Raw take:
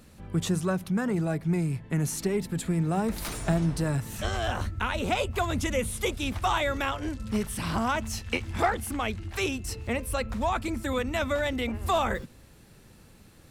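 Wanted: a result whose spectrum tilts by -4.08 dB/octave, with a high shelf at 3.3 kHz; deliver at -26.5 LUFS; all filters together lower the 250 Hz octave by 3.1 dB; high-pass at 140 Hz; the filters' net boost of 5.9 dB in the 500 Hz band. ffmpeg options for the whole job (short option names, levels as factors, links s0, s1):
-af "highpass=140,equalizer=f=250:t=o:g=-6.5,equalizer=f=500:t=o:g=9,highshelf=f=3300:g=3.5,volume=1.06"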